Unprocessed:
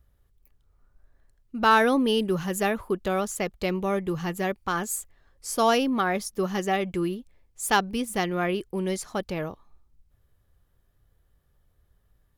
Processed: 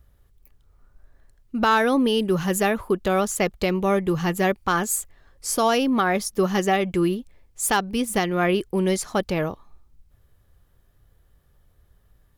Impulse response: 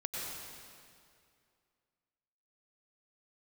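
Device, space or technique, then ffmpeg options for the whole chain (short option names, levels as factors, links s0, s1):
clipper into limiter: -af "asoftclip=type=hard:threshold=0.282,alimiter=limit=0.133:level=0:latency=1:release=373,volume=2.11"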